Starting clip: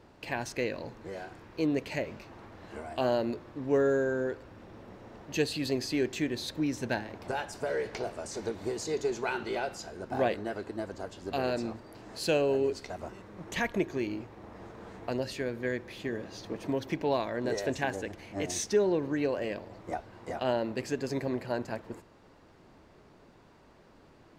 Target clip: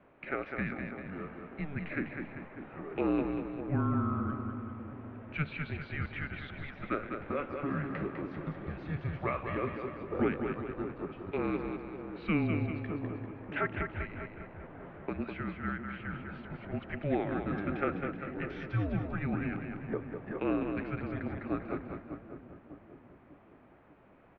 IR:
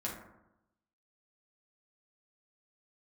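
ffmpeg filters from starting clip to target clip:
-filter_complex "[0:a]asplit=2[link_01][link_02];[link_02]aecho=0:1:202|394:0.501|0.251[link_03];[link_01][link_03]amix=inputs=2:normalize=0,highpass=frequency=480:width_type=q:width=0.5412,highpass=frequency=480:width_type=q:width=1.307,lowpass=frequency=2900:width_type=q:width=0.5176,lowpass=frequency=2900:width_type=q:width=0.7071,lowpass=frequency=2900:width_type=q:width=1.932,afreqshift=-300,asplit=2[link_04][link_05];[link_05]adelay=597,lowpass=frequency=930:poles=1,volume=-10dB,asplit=2[link_06][link_07];[link_07]adelay=597,lowpass=frequency=930:poles=1,volume=0.49,asplit=2[link_08][link_09];[link_09]adelay=597,lowpass=frequency=930:poles=1,volume=0.49,asplit=2[link_10][link_11];[link_11]adelay=597,lowpass=frequency=930:poles=1,volume=0.49,asplit=2[link_12][link_13];[link_13]adelay=597,lowpass=frequency=930:poles=1,volume=0.49[link_14];[link_06][link_08][link_10][link_12][link_14]amix=inputs=5:normalize=0[link_15];[link_04][link_15]amix=inputs=2:normalize=0"

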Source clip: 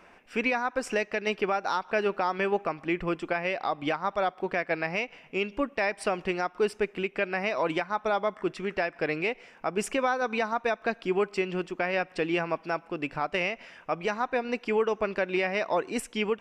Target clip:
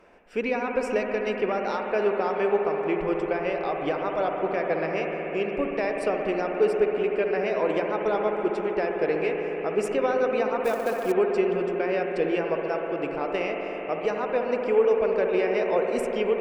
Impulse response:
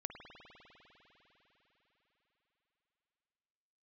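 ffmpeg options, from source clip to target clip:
-filter_complex "[0:a]equalizer=frequency=460:width_type=o:width=1.1:gain=9.5[link_01];[1:a]atrim=start_sample=2205,asetrate=35280,aresample=44100[link_02];[link_01][link_02]afir=irnorm=-1:irlink=0,asettb=1/sr,asplit=3[link_03][link_04][link_05];[link_03]atrim=end=10.644[link_06];[link_04]atrim=start=10.64:end=11.12,asetpts=PTS-STARTPTS,afade=type=in:duration=0.004:curve=qsin,afade=type=out:start_time=0.476:duration=0.004:curve=qsin,acrusher=bits=5:mode=log:mix=0:aa=0.000001[link_07];[link_05]atrim=start=11.116[link_08];[link_06][link_07]acrossfade=duration=0.004:curve1=hsin:curve2=qsin[link_09];[link_09][link_08]acrossfade=duration=0.004:curve1=qsin:curve2=hsin,lowshelf=frequency=95:gain=6.5,volume=-2dB"

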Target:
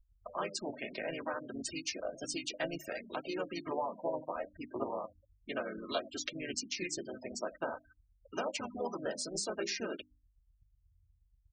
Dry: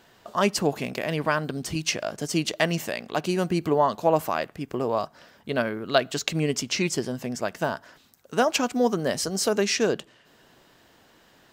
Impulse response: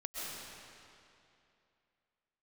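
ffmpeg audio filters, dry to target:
-filter_complex "[0:a]equalizer=frequency=78:width_type=o:width=3:gain=-11.5,aecho=1:1:3.2:0.5,aeval=exprs='val(0)+0.00224*(sin(2*PI*50*n/s)+sin(2*PI*2*50*n/s)/2+sin(2*PI*3*50*n/s)/3+sin(2*PI*4*50*n/s)/4+sin(2*PI*5*50*n/s)/5)':channel_layout=same,asplit=2[link_01][link_02];[link_02]adelay=83,lowpass=frequency=3700:poles=1,volume=-20.5dB,asplit=2[link_03][link_04];[link_04]adelay=83,lowpass=frequency=3700:poles=1,volume=0.15[link_05];[link_03][link_05]amix=inputs=2:normalize=0[link_06];[link_01][link_06]amix=inputs=2:normalize=0,acrossover=split=200|500[link_07][link_08][link_09];[link_07]acompressor=threshold=-48dB:ratio=4[link_10];[link_08]acompressor=threshold=-38dB:ratio=4[link_11];[link_09]acompressor=threshold=-33dB:ratio=4[link_12];[link_10][link_11][link_12]amix=inputs=3:normalize=0,flanger=delay=7.2:depth=7.3:regen=55:speed=0.62:shape=triangular,tremolo=f=160:d=0.462,asplit=2[link_13][link_14];[link_14]asetrate=37084,aresample=44100,atempo=1.18921,volume=-4dB[link_15];[link_13][link_15]amix=inputs=2:normalize=0,afftfilt=real='re*gte(hypot(re,im),0.0112)':imag='im*gte(hypot(re,im),0.0112)':win_size=1024:overlap=0.75,highshelf=frequency=9500:gain=9.5,bandreject=frequency=50:width_type=h:width=6,bandreject=frequency=100:width_type=h:width=6,bandreject=frequency=150:width_type=h:width=6,bandreject=frequency=200:width_type=h:width=6,bandreject=frequency=250:width_type=h:width=6,bandreject=frequency=300:width_type=h:width=6"

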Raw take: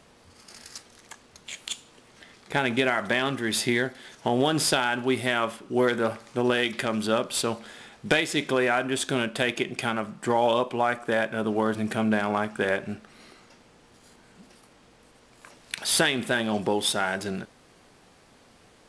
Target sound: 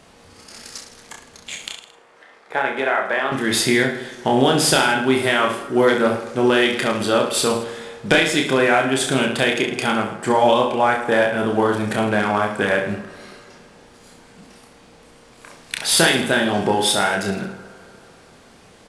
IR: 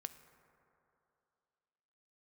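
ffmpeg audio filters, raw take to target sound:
-filter_complex "[0:a]asettb=1/sr,asplit=3[link_01][link_02][link_03];[link_01]atrim=end=1.694[link_04];[link_02]atrim=start=1.69:end=3.32,asetpts=PTS-STARTPTS,afade=type=in:duration=0.004:curve=qsin,afade=type=out:start_time=1.626:duration=0.004:curve=qsin,acrossover=split=410 2000:gain=0.1 1 0.2[link_05][link_06][link_07];[link_05][link_06][link_07]amix=inputs=3:normalize=0[link_08];[link_03]atrim=start=3.316[link_09];[link_04][link_08]acrossfade=duration=0.004:curve1=hsin:curve2=qsin[link_10];[link_10][link_09]acrossfade=duration=0.004:curve1=qsin:curve2=hsin,aecho=1:1:30|66|109.2|161|223.2:0.631|0.398|0.251|0.158|0.1,asplit=2[link_11][link_12];[1:a]atrim=start_sample=2205[link_13];[link_12][link_13]afir=irnorm=-1:irlink=0,volume=7.5dB[link_14];[link_11][link_14]amix=inputs=2:normalize=0,volume=-2.5dB"

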